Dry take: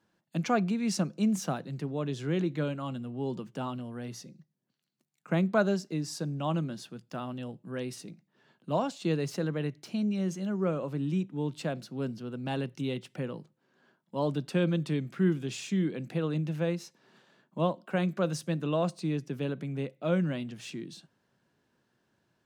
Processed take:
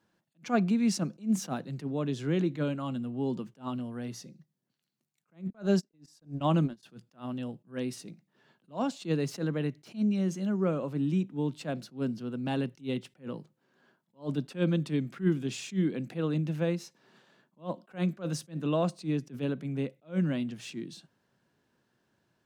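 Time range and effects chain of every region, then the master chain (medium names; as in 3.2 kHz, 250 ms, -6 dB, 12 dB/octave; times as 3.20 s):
5.50–6.83 s: gate -33 dBFS, range -60 dB + level flattener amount 50%
whole clip: dynamic bell 250 Hz, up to +5 dB, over -42 dBFS, Q 2.5; attacks held to a fixed rise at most 260 dB/s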